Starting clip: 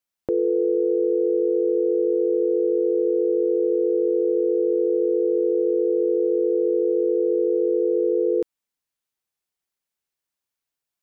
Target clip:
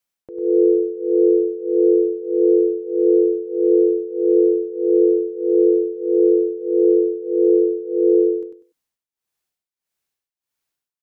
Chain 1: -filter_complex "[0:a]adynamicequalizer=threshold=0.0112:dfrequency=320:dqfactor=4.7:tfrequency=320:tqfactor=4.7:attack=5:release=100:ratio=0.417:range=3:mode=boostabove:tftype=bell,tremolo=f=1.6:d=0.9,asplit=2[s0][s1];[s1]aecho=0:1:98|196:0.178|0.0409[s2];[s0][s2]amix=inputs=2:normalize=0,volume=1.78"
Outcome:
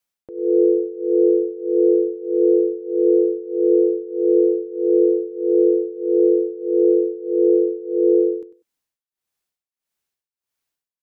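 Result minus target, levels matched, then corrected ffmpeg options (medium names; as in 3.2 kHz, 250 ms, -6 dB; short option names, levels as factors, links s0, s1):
echo-to-direct -9 dB
-filter_complex "[0:a]adynamicequalizer=threshold=0.0112:dfrequency=320:dqfactor=4.7:tfrequency=320:tqfactor=4.7:attack=5:release=100:ratio=0.417:range=3:mode=boostabove:tftype=bell,tremolo=f=1.6:d=0.9,asplit=2[s0][s1];[s1]aecho=0:1:98|196|294:0.501|0.115|0.0265[s2];[s0][s2]amix=inputs=2:normalize=0,volume=1.78"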